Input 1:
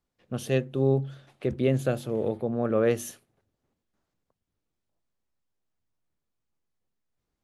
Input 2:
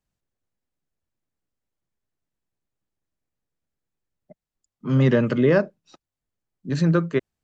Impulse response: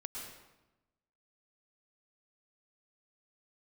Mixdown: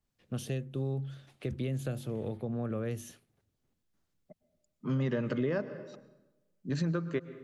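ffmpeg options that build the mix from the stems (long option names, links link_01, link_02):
-filter_complex "[0:a]equalizer=frequency=740:width=0.44:gain=-7,acrossover=split=180|740|6700[link_01][link_02][link_03][link_04];[link_01]acompressor=threshold=-33dB:ratio=4[link_05];[link_02]acompressor=threshold=-37dB:ratio=4[link_06];[link_03]acompressor=threshold=-46dB:ratio=4[link_07];[link_04]acompressor=threshold=-49dB:ratio=4[link_08];[link_05][link_06][link_07][link_08]amix=inputs=4:normalize=0,adynamicequalizer=threshold=0.00126:dfrequency=3600:dqfactor=0.7:tfrequency=3600:tqfactor=0.7:attack=5:release=100:ratio=0.375:range=2.5:mode=cutabove:tftype=highshelf,volume=0.5dB[link_09];[1:a]volume=-7dB,asplit=2[link_10][link_11];[link_11]volume=-12.5dB[link_12];[2:a]atrim=start_sample=2205[link_13];[link_12][link_13]afir=irnorm=-1:irlink=0[link_14];[link_09][link_10][link_14]amix=inputs=3:normalize=0,acompressor=threshold=-28dB:ratio=5"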